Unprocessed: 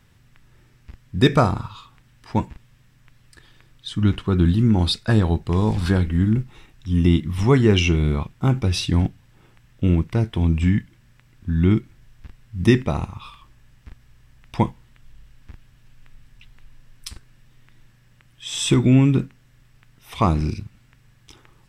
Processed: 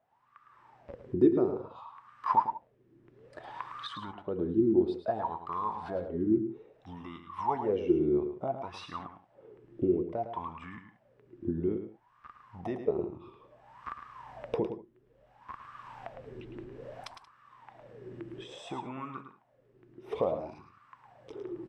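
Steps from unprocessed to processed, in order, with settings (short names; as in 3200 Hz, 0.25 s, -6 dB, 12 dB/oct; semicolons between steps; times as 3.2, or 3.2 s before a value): recorder AGC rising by 22 dB/s; wah 0.59 Hz 340–1200 Hz, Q 16; tapped delay 0.108/0.18 s -9/-19.5 dB; gain +8 dB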